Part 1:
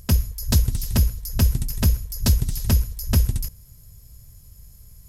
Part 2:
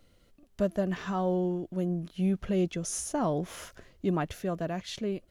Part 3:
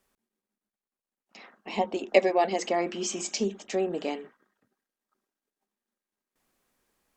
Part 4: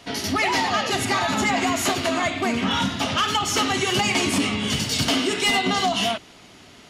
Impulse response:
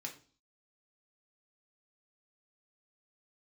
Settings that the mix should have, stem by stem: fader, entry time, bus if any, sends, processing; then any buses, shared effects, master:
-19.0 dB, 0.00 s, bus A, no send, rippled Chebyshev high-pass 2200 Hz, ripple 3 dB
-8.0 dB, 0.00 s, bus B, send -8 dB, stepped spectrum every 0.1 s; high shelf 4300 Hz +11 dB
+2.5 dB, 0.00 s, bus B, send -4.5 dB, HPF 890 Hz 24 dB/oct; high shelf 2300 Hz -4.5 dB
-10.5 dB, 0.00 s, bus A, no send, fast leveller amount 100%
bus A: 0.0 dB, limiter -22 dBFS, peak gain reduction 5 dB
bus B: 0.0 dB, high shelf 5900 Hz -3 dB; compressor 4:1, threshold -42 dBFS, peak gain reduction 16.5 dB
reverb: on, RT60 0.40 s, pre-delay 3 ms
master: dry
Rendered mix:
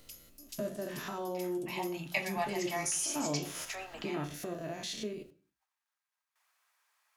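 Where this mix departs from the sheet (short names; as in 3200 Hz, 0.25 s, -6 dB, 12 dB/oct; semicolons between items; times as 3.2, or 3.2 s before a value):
stem 2 -8.0 dB -> +2.5 dB; stem 4: muted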